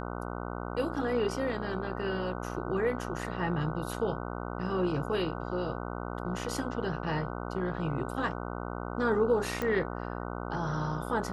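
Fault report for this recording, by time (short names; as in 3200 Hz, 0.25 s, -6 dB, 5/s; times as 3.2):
buzz 60 Hz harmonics 25 -37 dBFS
9.62 pop -19 dBFS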